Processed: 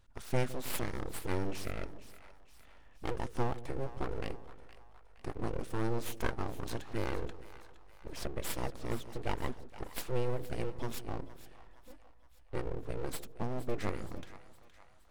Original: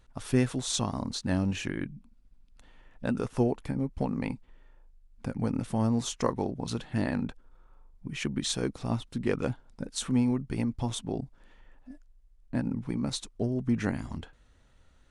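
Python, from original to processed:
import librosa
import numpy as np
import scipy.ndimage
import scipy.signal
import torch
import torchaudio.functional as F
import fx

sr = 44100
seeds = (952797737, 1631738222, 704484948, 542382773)

y = np.abs(x)
y = fx.echo_split(y, sr, split_hz=660.0, low_ms=159, high_ms=467, feedback_pct=52, wet_db=-14.5)
y = y * librosa.db_to_amplitude(-4.0)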